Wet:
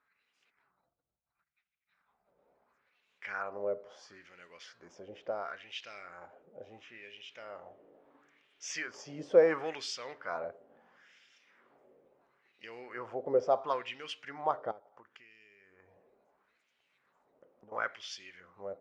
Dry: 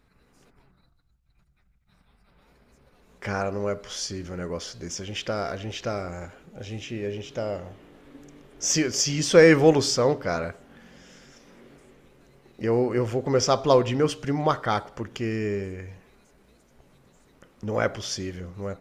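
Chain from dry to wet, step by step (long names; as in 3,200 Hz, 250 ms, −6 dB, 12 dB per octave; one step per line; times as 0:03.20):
0:14.71–0:17.72: downward compressor 10 to 1, threshold −39 dBFS, peak gain reduction 18.5 dB
auto-filter band-pass sine 0.73 Hz 530–2,900 Hz
level −3 dB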